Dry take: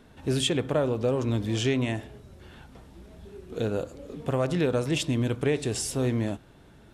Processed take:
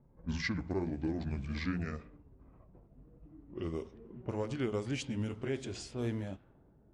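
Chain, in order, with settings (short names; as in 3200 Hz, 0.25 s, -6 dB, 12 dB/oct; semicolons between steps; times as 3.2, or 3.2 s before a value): gliding pitch shift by -9 st ending unshifted; low-pass opened by the level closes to 600 Hz, open at -23.5 dBFS; gain -8.5 dB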